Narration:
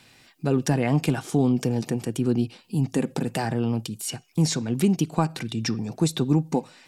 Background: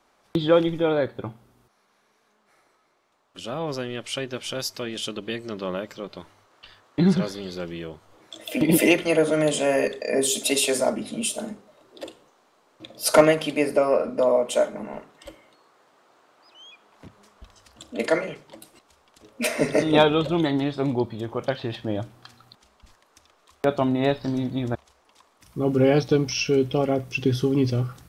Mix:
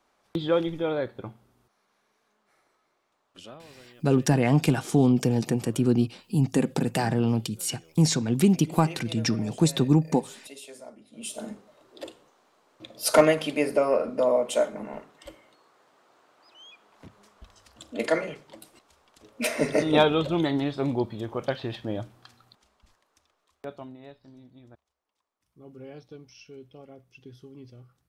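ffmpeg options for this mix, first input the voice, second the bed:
-filter_complex "[0:a]adelay=3600,volume=1dB[a];[1:a]volume=14.5dB,afade=t=out:st=3.31:d=0.31:silence=0.141254,afade=t=in:st=11.11:d=0.43:silence=0.1,afade=t=out:st=21.56:d=2.46:silence=0.0749894[b];[a][b]amix=inputs=2:normalize=0"

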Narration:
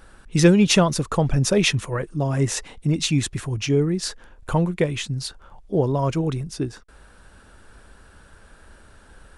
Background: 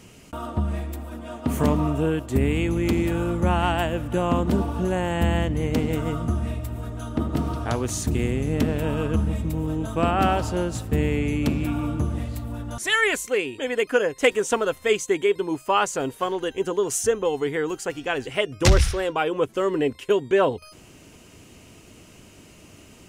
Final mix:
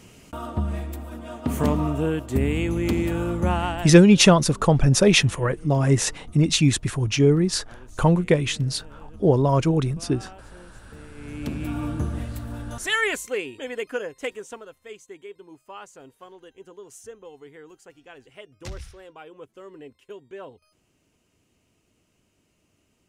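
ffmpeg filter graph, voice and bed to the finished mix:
-filter_complex "[0:a]adelay=3500,volume=2.5dB[a];[1:a]volume=20dB,afade=t=out:st=3.5:d=0.55:silence=0.0794328,afade=t=in:st=11.14:d=0.69:silence=0.0891251,afade=t=out:st=12.92:d=1.76:silence=0.125893[b];[a][b]amix=inputs=2:normalize=0"

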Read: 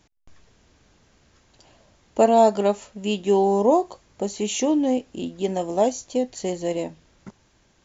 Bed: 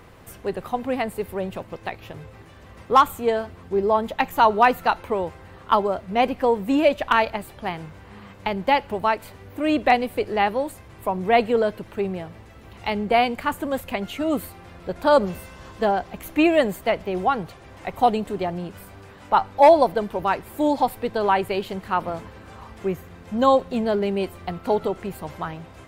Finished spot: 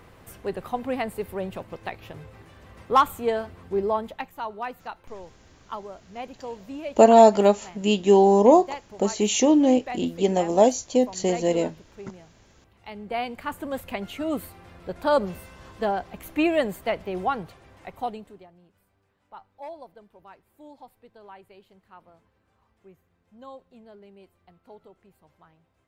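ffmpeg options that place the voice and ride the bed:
-filter_complex "[0:a]adelay=4800,volume=3dB[a];[1:a]volume=9dB,afade=t=out:st=3.78:d=0.54:silence=0.211349,afade=t=in:st=12.83:d=1.02:silence=0.251189,afade=t=out:st=17.3:d=1.18:silence=0.0794328[b];[a][b]amix=inputs=2:normalize=0"

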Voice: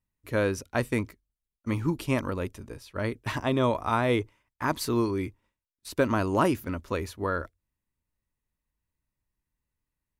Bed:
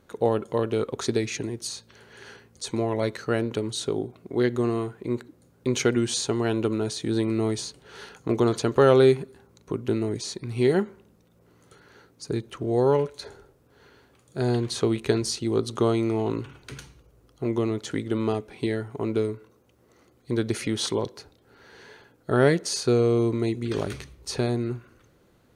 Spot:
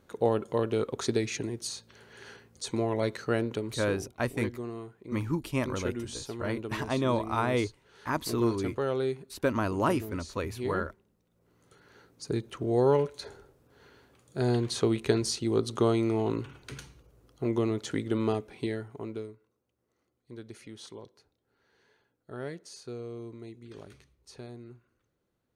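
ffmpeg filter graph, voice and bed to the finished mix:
-filter_complex "[0:a]adelay=3450,volume=-3dB[a];[1:a]volume=7.5dB,afade=t=out:st=3.39:d=0.64:silence=0.316228,afade=t=in:st=11.26:d=0.94:silence=0.298538,afade=t=out:st=18.3:d=1.08:silence=0.149624[b];[a][b]amix=inputs=2:normalize=0"

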